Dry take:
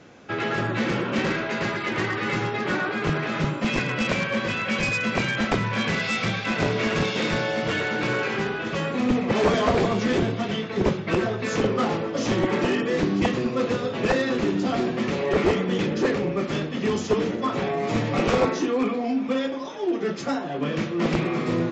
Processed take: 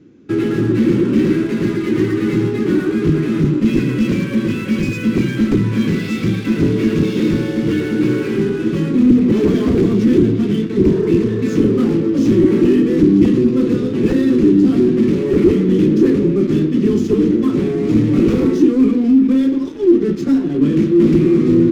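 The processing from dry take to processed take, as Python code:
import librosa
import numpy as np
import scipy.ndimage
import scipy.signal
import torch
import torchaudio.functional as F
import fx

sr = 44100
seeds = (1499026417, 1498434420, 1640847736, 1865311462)

p1 = fx.spec_repair(x, sr, seeds[0], start_s=10.9, length_s=0.49, low_hz=360.0, high_hz=1900.0, source='both')
p2 = fx.fuzz(p1, sr, gain_db=28.0, gate_db=-37.0)
p3 = p1 + F.gain(torch.from_numpy(p2), -5.5).numpy()
p4 = fx.low_shelf_res(p3, sr, hz=470.0, db=12.5, q=3.0)
y = F.gain(torch.from_numpy(p4), -11.0).numpy()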